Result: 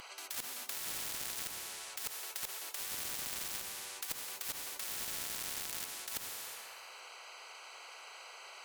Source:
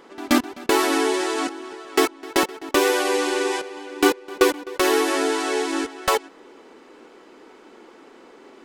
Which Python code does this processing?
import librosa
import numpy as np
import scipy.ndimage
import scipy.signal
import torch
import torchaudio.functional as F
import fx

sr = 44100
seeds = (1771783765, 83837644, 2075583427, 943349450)

y = fx.wiener(x, sr, points=25)
y = scipy.signal.sosfilt(scipy.signal.butter(4, 950.0, 'highpass', fs=sr, output='sos'), y)
y = np.diff(y, prepend=0.0)
y = fx.over_compress(y, sr, threshold_db=-37.0, ratio=-0.5)
y = fx.cheby_harmonics(y, sr, harmonics=(5,), levels_db=(-15,), full_scale_db=-16.0)
y = fx.rev_plate(y, sr, seeds[0], rt60_s=1.4, hf_ratio=0.75, predelay_ms=0, drr_db=11.5)
y = fx.spectral_comp(y, sr, ratio=10.0)
y = F.gain(torch.from_numpy(y), -2.0).numpy()